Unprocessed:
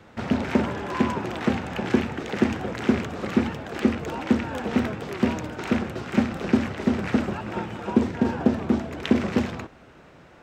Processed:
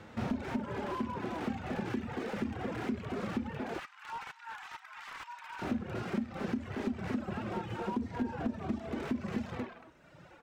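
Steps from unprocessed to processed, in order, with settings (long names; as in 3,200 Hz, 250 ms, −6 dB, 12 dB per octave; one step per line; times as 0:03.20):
far-end echo of a speakerphone 230 ms, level −7 dB
harmonic and percussive parts rebalanced percussive −14 dB
downward compressor 8 to 1, threshold −32 dBFS, peak gain reduction 13 dB
0:03.79–0:05.62: Chebyshev high-pass filter 880 Hz, order 5
reverb reduction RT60 1.5 s
slew-rate limiting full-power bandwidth 11 Hz
level +3 dB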